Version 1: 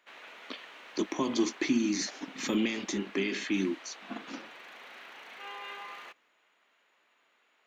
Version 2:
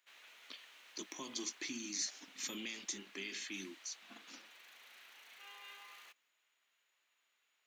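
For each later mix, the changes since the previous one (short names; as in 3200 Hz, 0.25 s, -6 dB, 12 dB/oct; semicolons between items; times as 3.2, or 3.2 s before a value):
master: add pre-emphasis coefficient 0.9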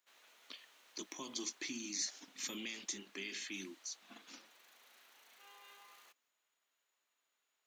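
background: add bell 2400 Hz -8.5 dB 1.6 oct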